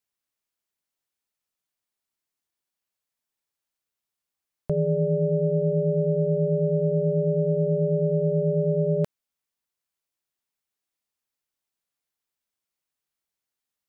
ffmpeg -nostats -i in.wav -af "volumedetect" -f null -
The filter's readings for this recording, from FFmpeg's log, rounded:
mean_volume: -27.7 dB
max_volume: -13.6 dB